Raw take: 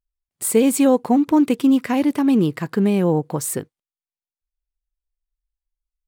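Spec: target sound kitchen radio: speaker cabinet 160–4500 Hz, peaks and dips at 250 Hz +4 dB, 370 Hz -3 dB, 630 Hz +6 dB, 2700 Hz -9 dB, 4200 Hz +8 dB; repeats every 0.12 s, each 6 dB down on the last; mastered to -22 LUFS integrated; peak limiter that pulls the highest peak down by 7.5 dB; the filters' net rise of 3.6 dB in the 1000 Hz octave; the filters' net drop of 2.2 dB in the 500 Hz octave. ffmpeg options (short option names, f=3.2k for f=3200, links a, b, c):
-af "equalizer=f=500:t=o:g=-4.5,equalizer=f=1k:t=o:g=5,alimiter=limit=-13.5dB:level=0:latency=1,highpass=160,equalizer=f=250:t=q:w=4:g=4,equalizer=f=370:t=q:w=4:g=-3,equalizer=f=630:t=q:w=4:g=6,equalizer=f=2.7k:t=q:w=4:g=-9,equalizer=f=4.2k:t=q:w=4:g=8,lowpass=f=4.5k:w=0.5412,lowpass=f=4.5k:w=1.3066,aecho=1:1:120|240|360|480|600|720:0.501|0.251|0.125|0.0626|0.0313|0.0157,volume=-1.5dB"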